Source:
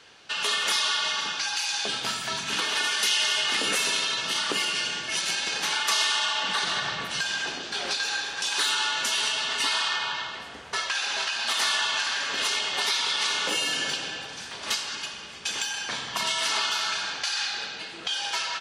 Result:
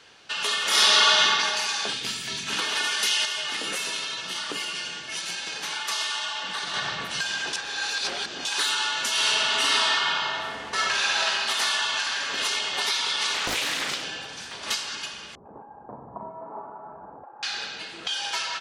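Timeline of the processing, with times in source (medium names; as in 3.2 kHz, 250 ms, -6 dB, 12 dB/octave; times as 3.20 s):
0.68–1.22 s: reverb throw, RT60 2.5 s, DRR -9 dB
1.93–2.47 s: high-order bell 920 Hz -9.5 dB
3.25–6.74 s: flange 1.9 Hz, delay 5.4 ms, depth 1.6 ms, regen +80%
7.53–8.45 s: reverse
9.11–11.30 s: reverb throw, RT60 1.5 s, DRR -3 dB
13.34–14.04 s: loudspeaker Doppler distortion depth 0.91 ms
15.35–17.43 s: steep low-pass 930 Hz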